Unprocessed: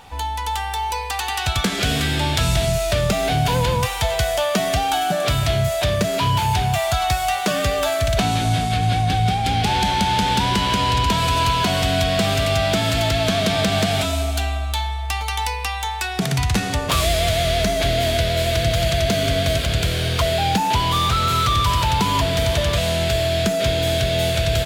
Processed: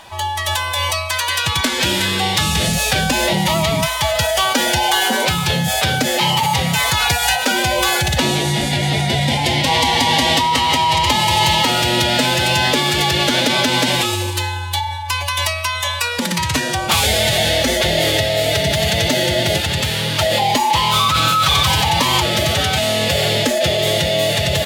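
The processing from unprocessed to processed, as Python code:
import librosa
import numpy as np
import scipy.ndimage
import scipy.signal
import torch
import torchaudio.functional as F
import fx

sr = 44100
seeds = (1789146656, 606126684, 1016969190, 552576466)

y = fx.low_shelf(x, sr, hz=330.0, db=-9.5)
y = fx.pitch_keep_formants(y, sr, semitones=4.5)
y = y * librosa.db_to_amplitude(6.0)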